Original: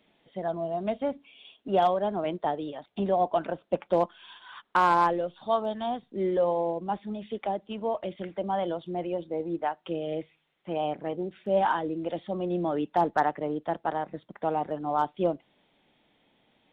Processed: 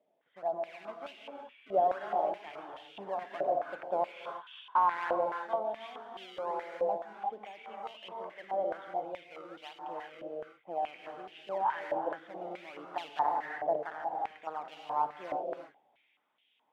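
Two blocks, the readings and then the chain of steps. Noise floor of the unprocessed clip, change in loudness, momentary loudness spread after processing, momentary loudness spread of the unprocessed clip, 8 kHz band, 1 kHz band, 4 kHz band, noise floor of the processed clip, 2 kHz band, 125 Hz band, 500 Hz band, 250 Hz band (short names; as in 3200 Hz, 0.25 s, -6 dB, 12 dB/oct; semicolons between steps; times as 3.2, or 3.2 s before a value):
-70 dBFS, -6.0 dB, 14 LU, 10 LU, n/a, -4.5 dB, -6.0 dB, -74 dBFS, -5.0 dB, -21.0 dB, -7.0 dB, -16.5 dB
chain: bell 1400 Hz -4.5 dB 0.77 oct; transient shaper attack +2 dB, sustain +6 dB; in parallel at -11 dB: decimation with a swept rate 29×, swing 160% 1.3 Hz; on the sum: non-linear reverb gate 0.39 s rising, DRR 1.5 dB; stepped band-pass 4.7 Hz 630–2900 Hz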